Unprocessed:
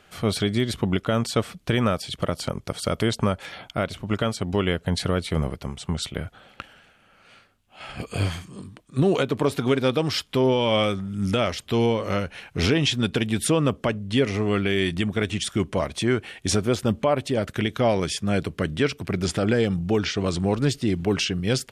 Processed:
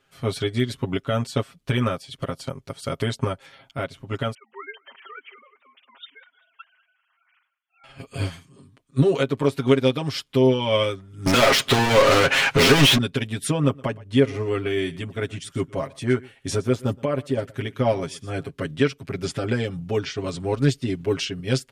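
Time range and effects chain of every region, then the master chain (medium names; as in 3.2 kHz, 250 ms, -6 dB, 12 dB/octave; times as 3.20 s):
4.34–7.84 s: formants replaced by sine waves + high-pass 1.2 kHz + feedback delay 195 ms, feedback 41%, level -22.5 dB
11.26–12.98 s: treble shelf 10 kHz -11 dB + overdrive pedal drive 38 dB, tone 4.8 kHz, clips at -10 dBFS
13.51–18.50 s: peaking EQ 3.9 kHz -4 dB 2 oct + delay 119 ms -16.5 dB
whole clip: band-stop 740 Hz, Q 12; comb 7.4 ms, depth 89%; upward expansion 1.5:1, over -36 dBFS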